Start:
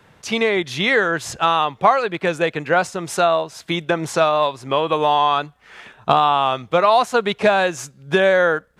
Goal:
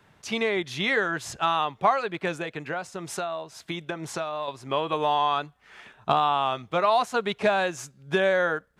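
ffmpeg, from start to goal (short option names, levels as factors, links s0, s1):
-filter_complex "[0:a]bandreject=f=500:w=12,asettb=1/sr,asplit=3[s0][s1][s2];[s0]atrim=end=2.354[s3];[s1]atrim=start=2.35:end=4.48,asetpts=PTS-STARTPTS,afade=t=in:d=0.004:c=qsin,afade=t=out:st=2.126:d=0.004:c=qsin,acompressor=threshold=0.0794:ratio=4[s4];[s2]atrim=start=4.476[s5];[s3][s4]acrossfade=d=0.004:c1=hsin:c2=qsin[s6];[s6][s5]acrossfade=d=0.004:c1=qsin:c2=hsin,volume=0.447"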